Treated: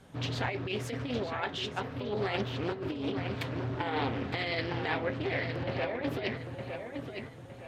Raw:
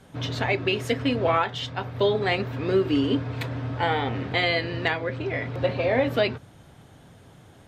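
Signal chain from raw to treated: compressor with a negative ratio -25 dBFS, ratio -0.5; filtered feedback delay 912 ms, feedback 38%, low-pass 4.7 kHz, level -6 dB; loudspeaker Doppler distortion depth 0.4 ms; trim -6.5 dB

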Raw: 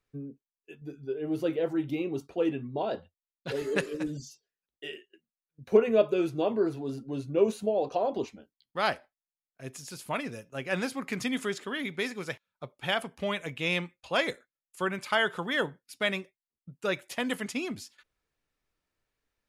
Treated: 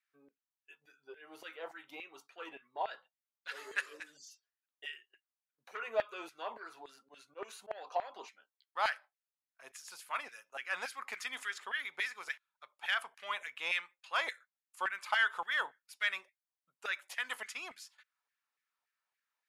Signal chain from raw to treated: saturation -16 dBFS, distortion -18 dB; LFO high-pass saw down 3.5 Hz 770–1900 Hz; 7.00–7.71 s: slow attack 109 ms; trim -6.5 dB

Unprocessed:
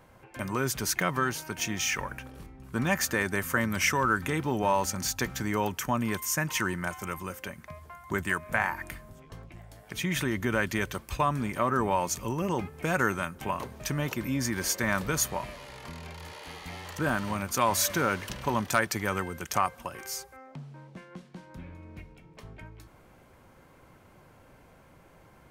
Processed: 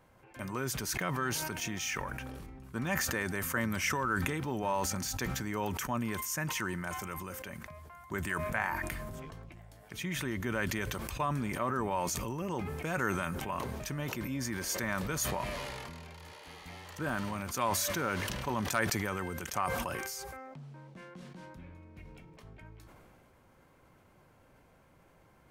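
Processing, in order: decay stretcher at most 20 dB/s; trim -7 dB

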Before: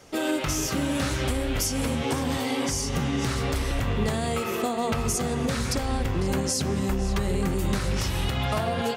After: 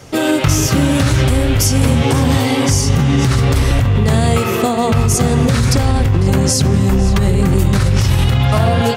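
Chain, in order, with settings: peaking EQ 110 Hz +12.5 dB 0.9 oct; in parallel at +2 dB: compressor with a negative ratio -22 dBFS, ratio -0.5; on the sum: trim +3 dB

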